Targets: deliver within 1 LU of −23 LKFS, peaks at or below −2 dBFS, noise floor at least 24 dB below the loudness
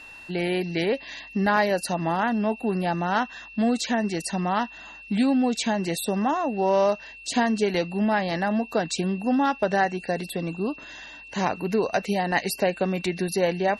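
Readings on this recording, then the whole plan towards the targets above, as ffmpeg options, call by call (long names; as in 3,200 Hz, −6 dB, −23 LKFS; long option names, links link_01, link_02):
interfering tone 2,700 Hz; level of the tone −42 dBFS; integrated loudness −25.0 LKFS; sample peak −8.5 dBFS; target loudness −23.0 LKFS
→ -af "bandreject=frequency=2700:width=30"
-af "volume=2dB"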